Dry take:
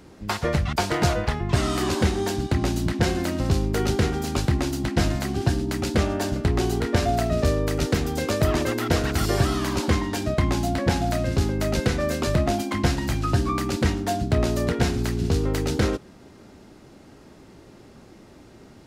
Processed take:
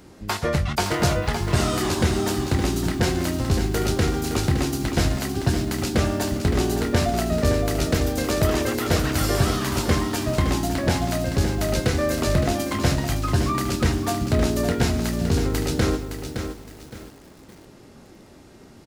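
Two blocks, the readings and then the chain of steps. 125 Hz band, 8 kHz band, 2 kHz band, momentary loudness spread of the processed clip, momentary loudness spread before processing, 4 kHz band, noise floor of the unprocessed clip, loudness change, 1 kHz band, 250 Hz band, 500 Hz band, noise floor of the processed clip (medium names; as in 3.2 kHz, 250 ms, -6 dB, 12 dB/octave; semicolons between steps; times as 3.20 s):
+1.0 dB, +4.0 dB, +1.0 dB, 3 LU, 3 LU, +2.5 dB, -49 dBFS, +1.0 dB, +0.5 dB, +1.0 dB, +1.0 dB, -48 dBFS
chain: treble shelf 7.5 kHz +6 dB; doubling 22 ms -10.5 dB; bit-crushed delay 565 ms, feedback 35%, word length 7-bit, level -7.5 dB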